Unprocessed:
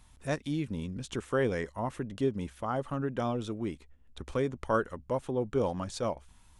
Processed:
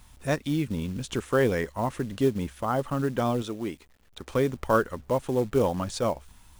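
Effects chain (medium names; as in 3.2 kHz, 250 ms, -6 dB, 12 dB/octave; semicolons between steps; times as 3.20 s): 3.42–4.34 s: bass shelf 180 Hz -11 dB; companded quantiser 6-bit; trim +5.5 dB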